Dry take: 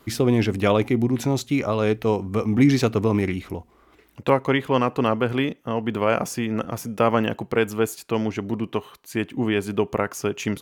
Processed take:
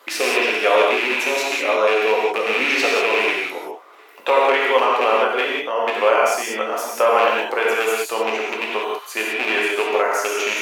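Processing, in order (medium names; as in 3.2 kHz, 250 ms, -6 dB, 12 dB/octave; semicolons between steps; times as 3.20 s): rattle on loud lows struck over -21 dBFS, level -13 dBFS; in parallel at +2 dB: compression, threshold -28 dBFS, peak gain reduction 15 dB; on the sum: high-pass 480 Hz 24 dB/octave; treble shelf 4.3 kHz -5 dB; gated-style reverb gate 220 ms flat, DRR -4.5 dB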